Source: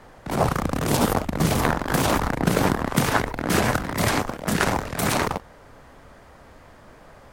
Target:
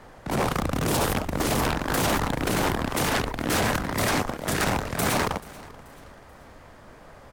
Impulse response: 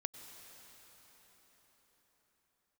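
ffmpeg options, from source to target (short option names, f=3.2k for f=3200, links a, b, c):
-af "afftfilt=real='re*lt(hypot(re,im),0.631)':imag='im*lt(hypot(re,im),0.631)':win_size=1024:overlap=0.75,aeval=exprs='0.141*(abs(mod(val(0)/0.141+3,4)-2)-1)':c=same,aecho=1:1:434|868|1302:0.0891|0.0374|0.0157"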